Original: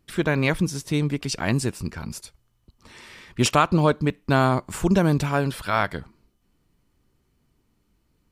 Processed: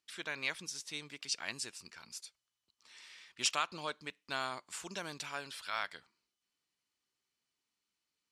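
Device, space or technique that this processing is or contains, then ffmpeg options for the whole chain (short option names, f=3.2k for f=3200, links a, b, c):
piezo pickup straight into a mixer: -af "lowpass=5.2k,aderivative"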